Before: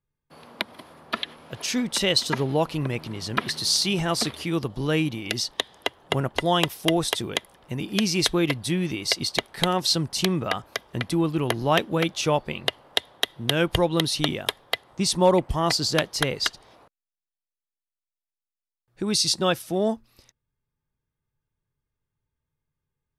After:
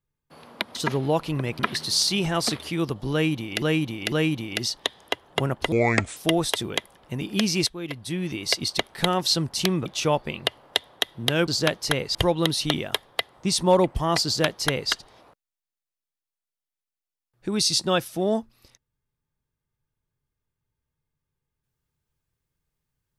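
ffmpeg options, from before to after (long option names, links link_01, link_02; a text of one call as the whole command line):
ffmpeg -i in.wav -filter_complex "[0:a]asplit=11[link_01][link_02][link_03][link_04][link_05][link_06][link_07][link_08][link_09][link_10][link_11];[link_01]atrim=end=0.752[link_12];[link_02]atrim=start=2.208:end=3.052[link_13];[link_03]atrim=start=3.328:end=5.362[link_14];[link_04]atrim=start=4.858:end=5.362[link_15];[link_05]atrim=start=4.858:end=6.464[link_16];[link_06]atrim=start=6.46:end=6.76,asetpts=PTS-STARTPTS,asetrate=29547,aresample=44100,atrim=end_sample=19746,asetpts=PTS-STARTPTS[link_17];[link_07]atrim=start=6.756:end=8.26,asetpts=PTS-STARTPTS,afade=type=out:start_time=1.5:duration=0.004:curve=hsin:silence=0.112202[link_18];[link_08]atrim=start=8.26:end=10.452,asetpts=PTS-STARTPTS,afade=type=in:duration=0.83:silence=0.112202[link_19];[link_09]atrim=start=12.068:end=13.692[link_20];[link_10]atrim=start=15.788:end=16.462[link_21];[link_11]atrim=start=13.688[link_22];[link_12][link_13]acrossfade=duration=0.004:curve1=hsin:curve2=hsin[link_23];[link_23][link_14]acrossfade=duration=0.004:curve1=hsin:curve2=hsin[link_24];[link_24][link_15]acrossfade=duration=0.004:curve1=hsin:curve2=hsin[link_25];[link_25][link_16]acrossfade=duration=0.004:curve1=hsin:curve2=hsin[link_26];[link_26][link_17]acrossfade=duration=0.004:curve1=hsin:curve2=hsin[link_27];[link_18][link_19]concat=n=2:v=0:a=1[link_28];[link_27][link_28]acrossfade=duration=0.004:curve1=hsin:curve2=hsin[link_29];[link_29][link_20]acrossfade=duration=0.004:curve1=hsin:curve2=hsin[link_30];[link_30][link_21]acrossfade=duration=0.004:curve1=hsin:curve2=hsin[link_31];[link_31][link_22]acrossfade=duration=0.004:curve1=hsin:curve2=hsin" out.wav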